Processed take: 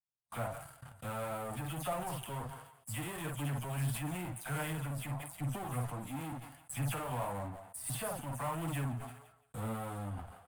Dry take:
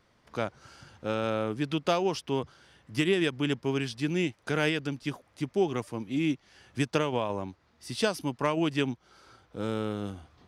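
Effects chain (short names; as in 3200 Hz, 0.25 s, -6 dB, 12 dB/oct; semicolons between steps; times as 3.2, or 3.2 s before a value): spectral delay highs early, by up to 0.111 s; doubler 50 ms -7 dB; gate -52 dBFS, range -29 dB; in parallel at -10 dB: fuzz box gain 41 dB, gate -49 dBFS; on the sum: EQ curve 140 Hz 0 dB, 400 Hz -17 dB, 680 Hz 0 dB, 5800 Hz -14 dB, 8900 Hz +11 dB; thinning echo 0.17 s, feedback 26%, high-pass 850 Hz, level -20 dB; on a send at -23.5 dB: reverb RT60 1.0 s, pre-delay 3 ms; on the sum: flange 1.5 Hz, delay 5.9 ms, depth 3.5 ms, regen +43%; high shelf 4300 Hz -7.5 dB; sustainer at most 72 dB/s; gain -8 dB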